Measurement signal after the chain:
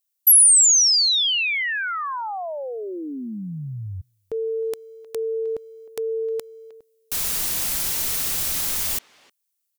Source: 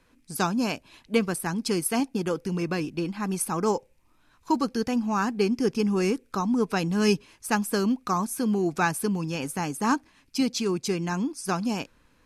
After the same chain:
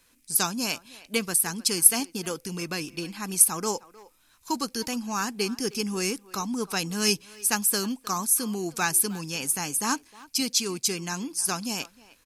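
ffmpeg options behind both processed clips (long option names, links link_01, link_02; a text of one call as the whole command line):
ffmpeg -i in.wav -filter_complex "[0:a]asplit=2[link_01][link_02];[link_02]adelay=310,highpass=300,lowpass=3400,asoftclip=type=hard:threshold=-17.5dB,volume=-19dB[link_03];[link_01][link_03]amix=inputs=2:normalize=0,crystalizer=i=6.5:c=0,volume=-6.5dB" out.wav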